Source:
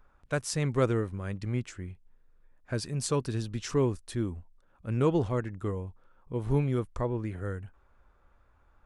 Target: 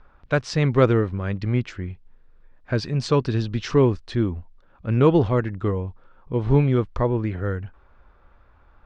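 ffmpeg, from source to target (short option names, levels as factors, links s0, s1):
-af "lowpass=f=4800:w=0.5412,lowpass=f=4800:w=1.3066,volume=2.82"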